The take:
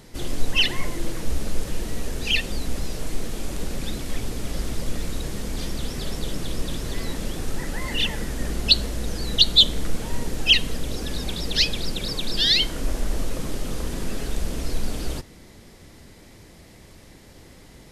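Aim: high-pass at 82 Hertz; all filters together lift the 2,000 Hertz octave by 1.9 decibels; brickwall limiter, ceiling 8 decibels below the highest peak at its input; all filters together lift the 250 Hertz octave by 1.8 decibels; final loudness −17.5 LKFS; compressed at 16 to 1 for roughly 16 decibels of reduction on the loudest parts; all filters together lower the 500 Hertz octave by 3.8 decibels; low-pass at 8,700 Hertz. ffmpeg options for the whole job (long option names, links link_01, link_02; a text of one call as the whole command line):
ffmpeg -i in.wav -af "highpass=82,lowpass=8700,equalizer=frequency=250:width_type=o:gain=4,equalizer=frequency=500:width_type=o:gain=-6.5,equalizer=frequency=2000:width_type=o:gain=3,acompressor=threshold=-26dB:ratio=16,volume=16dB,alimiter=limit=-8dB:level=0:latency=1" out.wav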